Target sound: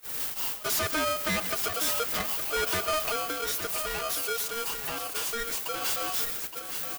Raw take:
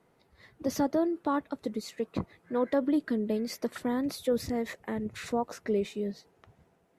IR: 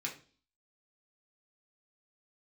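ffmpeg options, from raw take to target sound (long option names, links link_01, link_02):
-filter_complex "[0:a]aeval=exprs='val(0)+0.5*0.00841*sgn(val(0))':channel_layout=same,aemphasis=mode=production:type=bsi,agate=range=-30dB:threshold=-39dB:ratio=16:detection=peak,tiltshelf=frequency=970:gain=-4,aecho=1:1:6.3:0.7,asettb=1/sr,asplit=3[link_01][link_02][link_03];[link_01]atrim=end=3.244[link_04];[link_02]atrim=start=3.24:end=5.82,asetpts=PTS-STARTPTS,afade=type=in:duration=0.004:curve=qsin,afade=type=out:start_time=2.576:duration=0.004:curve=qsin,acompressor=threshold=-34dB:ratio=6[link_05];[link_03]atrim=start=5.816[link_06];[link_04][link_05]acrossfade=duration=0.004:curve1=hsin:curve2=qsin[link_07];[link_07][link_06]acrossfade=duration=0.004:curve1=qsin:curve2=hsin,asoftclip=type=tanh:threshold=-33dB,aecho=1:1:128|867:0.2|0.355,aeval=exprs='val(0)*sgn(sin(2*PI*930*n/s))':channel_layout=same,volume=7.5dB"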